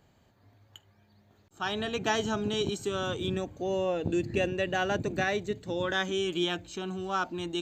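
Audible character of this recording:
background noise floor −65 dBFS
spectral slope −3.5 dB per octave

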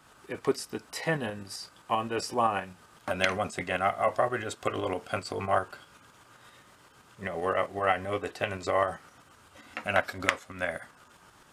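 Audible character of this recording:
tremolo saw up 7.7 Hz, depth 45%

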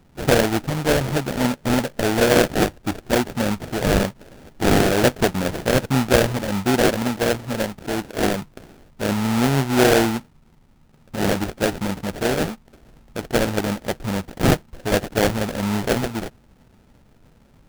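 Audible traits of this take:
aliases and images of a low sample rate 1,100 Hz, jitter 20%

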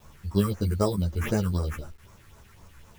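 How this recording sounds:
aliases and images of a low sample rate 4,400 Hz, jitter 0%
phaser sweep stages 4, 3.9 Hz, lowest notch 620–3,500 Hz
a quantiser's noise floor 10 bits, dither none
a shimmering, thickened sound

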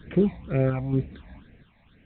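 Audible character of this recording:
sample-and-hold tremolo 4.3 Hz, depth 80%
a quantiser's noise floor 10 bits, dither triangular
phaser sweep stages 8, 2.1 Hz, lowest notch 390–1,100 Hz
mu-law

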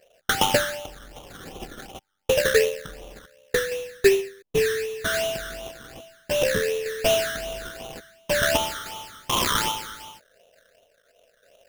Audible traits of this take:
aliases and images of a low sample rate 2,200 Hz, jitter 20%
sample-and-hold tremolo 3.5 Hz
phaser sweep stages 12, 2.7 Hz, lowest notch 800–1,600 Hz

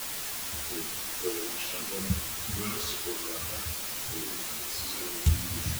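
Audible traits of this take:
phaser sweep stages 2, 0.56 Hz, lowest notch 170–1,100 Hz
a quantiser's noise floor 6 bits, dither triangular
a shimmering, thickened sound

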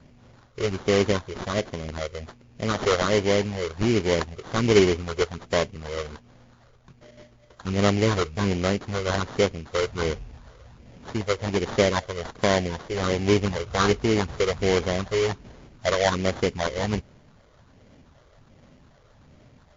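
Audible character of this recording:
phaser sweep stages 8, 1.3 Hz, lowest notch 230–2,400 Hz
aliases and images of a low sample rate 2,600 Hz, jitter 20%
WMA

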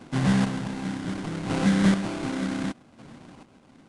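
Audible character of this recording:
chopped level 0.67 Hz, depth 60%, duty 30%
aliases and images of a low sample rate 1,800 Hz, jitter 20%
Nellymoser

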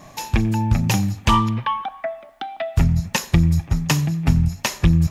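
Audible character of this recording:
background noise floor −45 dBFS
spectral slope −5.5 dB per octave

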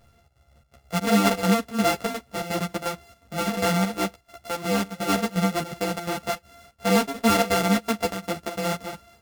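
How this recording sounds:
a buzz of ramps at a fixed pitch in blocks of 64 samples
chopped level 2.8 Hz, depth 65%, duty 75%
a shimmering, thickened sound

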